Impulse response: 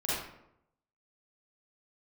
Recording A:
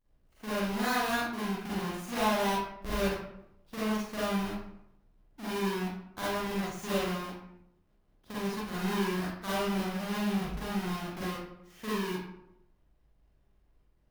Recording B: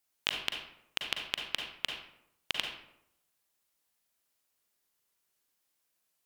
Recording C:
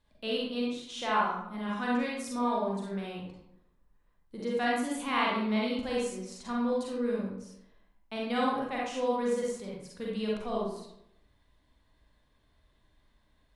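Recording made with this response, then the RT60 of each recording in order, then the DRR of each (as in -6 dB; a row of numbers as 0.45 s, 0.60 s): A; 0.80 s, 0.80 s, 0.80 s; -9.5 dB, 2.0 dB, -4.5 dB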